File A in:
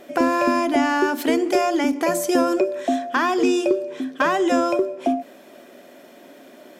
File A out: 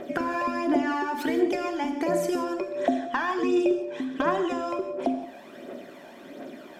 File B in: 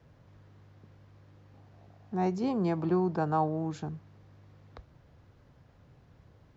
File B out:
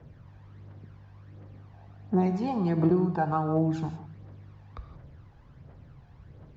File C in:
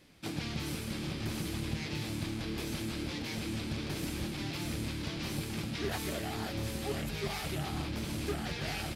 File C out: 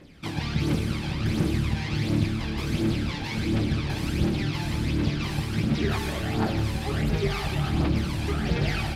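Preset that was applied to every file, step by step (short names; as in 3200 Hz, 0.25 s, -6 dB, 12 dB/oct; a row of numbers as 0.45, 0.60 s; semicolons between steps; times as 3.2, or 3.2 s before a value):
LPF 3000 Hz 6 dB/oct; compressor 6:1, threshold -27 dBFS; phaser 1.4 Hz, delay 1.3 ms, feedback 57%; non-linear reverb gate 0.2 s flat, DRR 7 dB; match loudness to -27 LUFS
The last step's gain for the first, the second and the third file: +1.0, +3.0, +7.0 dB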